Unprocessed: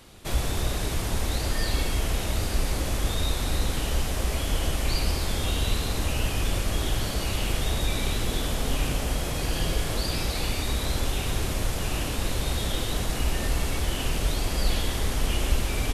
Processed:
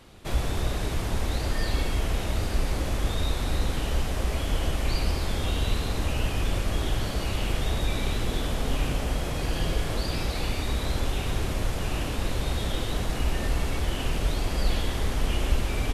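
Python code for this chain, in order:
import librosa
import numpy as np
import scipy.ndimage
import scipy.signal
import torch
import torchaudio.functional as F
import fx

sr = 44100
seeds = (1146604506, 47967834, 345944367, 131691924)

y = fx.high_shelf(x, sr, hz=4500.0, db=-8.0)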